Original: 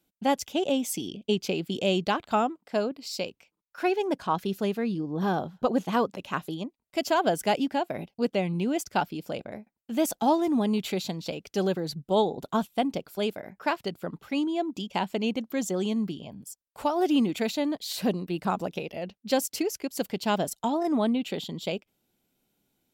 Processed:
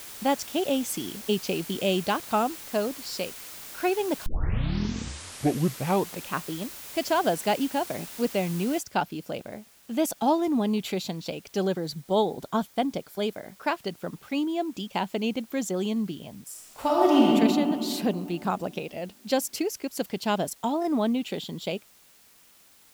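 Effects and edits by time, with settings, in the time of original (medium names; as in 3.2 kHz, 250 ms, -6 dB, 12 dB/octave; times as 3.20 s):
4.26 s: tape start 2.08 s
8.79 s: noise floor step -42 dB -57 dB
11.63–13.56 s: band-stop 2.7 kHz
16.46–17.29 s: reverb throw, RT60 2.6 s, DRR -4.5 dB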